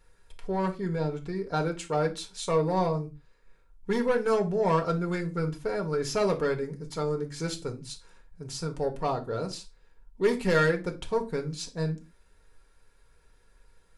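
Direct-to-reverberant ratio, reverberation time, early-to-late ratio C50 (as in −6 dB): 2.5 dB, non-exponential decay, 15.0 dB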